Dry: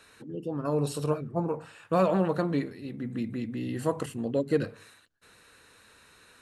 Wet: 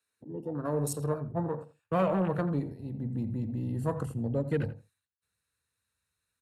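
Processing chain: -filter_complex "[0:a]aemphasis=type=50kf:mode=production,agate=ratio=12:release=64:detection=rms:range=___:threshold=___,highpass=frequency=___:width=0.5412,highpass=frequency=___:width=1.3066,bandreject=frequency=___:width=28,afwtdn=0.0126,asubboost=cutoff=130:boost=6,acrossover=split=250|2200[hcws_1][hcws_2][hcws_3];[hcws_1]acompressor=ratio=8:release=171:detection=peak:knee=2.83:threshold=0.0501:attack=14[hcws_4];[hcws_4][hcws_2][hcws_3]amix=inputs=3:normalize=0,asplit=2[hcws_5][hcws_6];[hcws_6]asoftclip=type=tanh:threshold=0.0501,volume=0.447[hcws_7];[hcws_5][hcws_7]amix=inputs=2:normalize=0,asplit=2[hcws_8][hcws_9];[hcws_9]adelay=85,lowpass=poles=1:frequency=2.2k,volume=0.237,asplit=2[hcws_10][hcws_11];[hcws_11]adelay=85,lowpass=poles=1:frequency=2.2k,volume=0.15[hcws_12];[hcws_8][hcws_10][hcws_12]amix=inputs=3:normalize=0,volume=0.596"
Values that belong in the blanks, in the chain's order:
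0.224, 0.00631, 56, 56, 3k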